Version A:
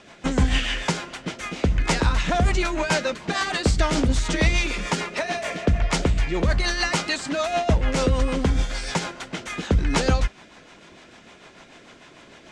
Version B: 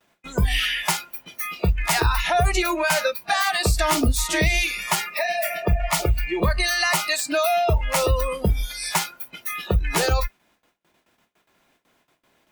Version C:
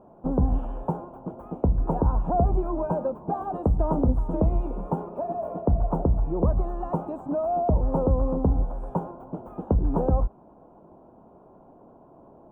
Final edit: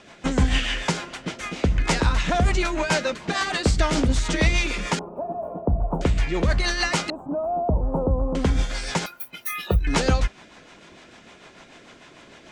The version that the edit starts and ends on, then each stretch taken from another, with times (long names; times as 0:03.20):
A
0:04.99–0:06.01: punch in from C
0:07.10–0:08.35: punch in from C
0:09.06–0:09.87: punch in from B